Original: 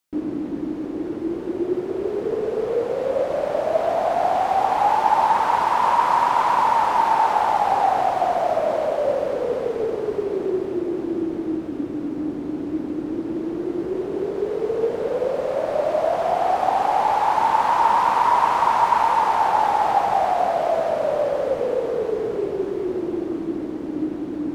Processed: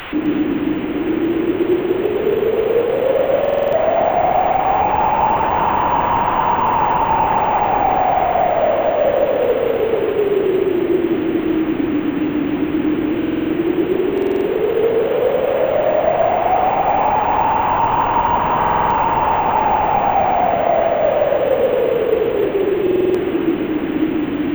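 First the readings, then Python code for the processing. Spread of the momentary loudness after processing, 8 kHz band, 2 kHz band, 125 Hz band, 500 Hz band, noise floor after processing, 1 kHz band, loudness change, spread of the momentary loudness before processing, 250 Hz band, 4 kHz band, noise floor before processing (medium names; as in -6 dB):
3 LU, no reading, +5.5 dB, +10.5 dB, +7.0 dB, -21 dBFS, +3.0 dB, +5.0 dB, 10 LU, +8.5 dB, +5.5 dB, -30 dBFS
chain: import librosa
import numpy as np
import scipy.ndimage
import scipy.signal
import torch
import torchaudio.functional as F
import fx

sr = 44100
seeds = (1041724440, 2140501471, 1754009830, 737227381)

p1 = fx.delta_mod(x, sr, bps=16000, step_db=-29.0)
p2 = fx.echo_alternate(p1, sr, ms=129, hz=930.0, feedback_pct=64, wet_db=-3.0)
p3 = fx.rider(p2, sr, range_db=3, speed_s=0.5)
p4 = p2 + (p3 * 10.0 ** (-2.0 / 20.0))
p5 = np.repeat(scipy.signal.resample_poly(p4, 1, 2), 2)[:len(p4)]
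y = fx.buffer_glitch(p5, sr, at_s=(3.4, 13.18, 14.13, 18.58, 22.82), block=2048, repeats=6)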